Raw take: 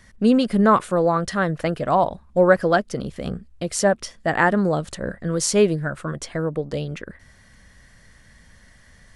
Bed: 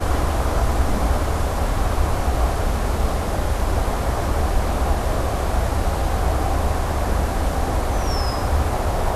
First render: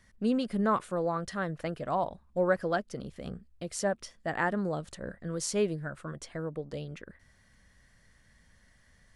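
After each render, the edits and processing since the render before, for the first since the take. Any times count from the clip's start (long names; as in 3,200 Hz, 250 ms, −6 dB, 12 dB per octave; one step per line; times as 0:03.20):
level −11.5 dB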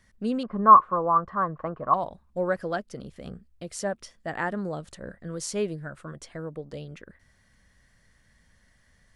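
0:00.43–0:01.94: low-pass with resonance 1,100 Hz, resonance Q 11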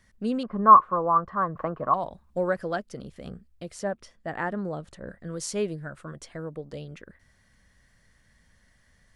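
0:01.55–0:02.62: multiband upward and downward compressor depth 40%
0:03.72–0:05.08: high-shelf EQ 3,300 Hz −8 dB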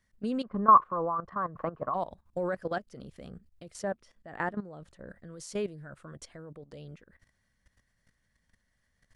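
output level in coarse steps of 15 dB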